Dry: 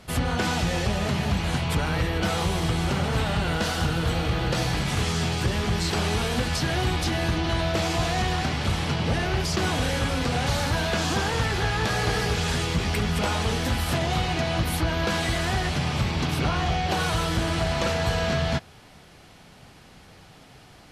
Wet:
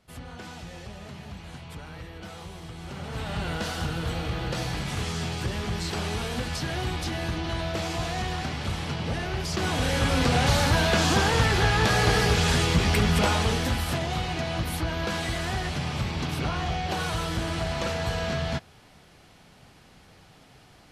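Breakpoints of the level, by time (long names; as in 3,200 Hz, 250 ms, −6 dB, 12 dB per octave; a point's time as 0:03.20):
0:02.74 −16 dB
0:03.41 −5 dB
0:09.38 −5 dB
0:10.20 +3 dB
0:13.19 +3 dB
0:14.08 −4 dB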